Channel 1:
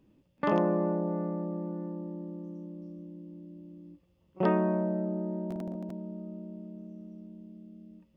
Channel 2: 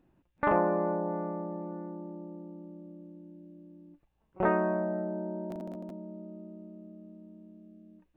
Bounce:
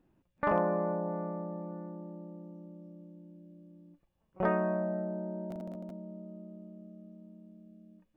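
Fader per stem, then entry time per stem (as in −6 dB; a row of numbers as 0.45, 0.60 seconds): −14.5, −3.0 decibels; 0.00, 0.00 seconds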